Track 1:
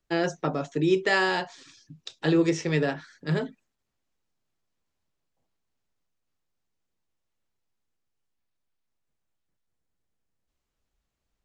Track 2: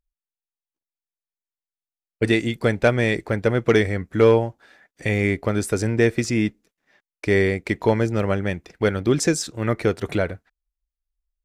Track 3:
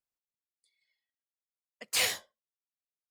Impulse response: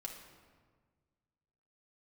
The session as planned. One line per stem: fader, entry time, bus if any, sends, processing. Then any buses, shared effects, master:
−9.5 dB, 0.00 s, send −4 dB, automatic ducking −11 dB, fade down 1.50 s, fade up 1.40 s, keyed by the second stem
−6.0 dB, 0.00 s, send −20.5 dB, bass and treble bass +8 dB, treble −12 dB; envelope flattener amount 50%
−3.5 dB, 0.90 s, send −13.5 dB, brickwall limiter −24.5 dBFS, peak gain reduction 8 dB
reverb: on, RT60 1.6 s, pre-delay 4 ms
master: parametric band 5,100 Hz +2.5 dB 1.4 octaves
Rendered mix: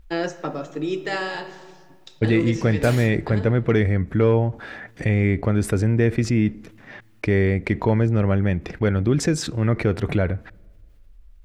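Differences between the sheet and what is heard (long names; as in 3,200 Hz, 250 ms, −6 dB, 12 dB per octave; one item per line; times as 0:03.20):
stem 1 −9.5 dB → −1.0 dB
master: missing parametric band 5,100 Hz +2.5 dB 1.4 octaves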